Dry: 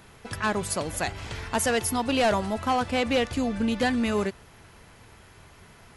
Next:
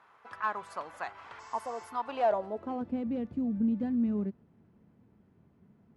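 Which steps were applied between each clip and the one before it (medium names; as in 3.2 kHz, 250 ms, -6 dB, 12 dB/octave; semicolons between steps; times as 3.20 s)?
spectral replace 1.42–1.84 s, 1.2–8 kHz after; band-pass sweep 1.1 kHz -> 210 Hz, 2.04–3.00 s; trim -1 dB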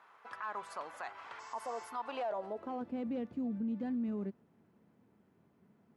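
high-pass 320 Hz 6 dB/octave; peak limiter -30.5 dBFS, peak gain reduction 11.5 dB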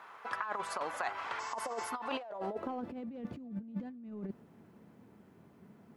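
compressor with a negative ratio -42 dBFS, ratio -0.5; trim +4.5 dB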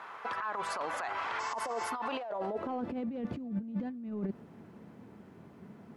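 treble shelf 9.6 kHz -10.5 dB; peak limiter -33 dBFS, peak gain reduction 11.5 dB; trim +6.5 dB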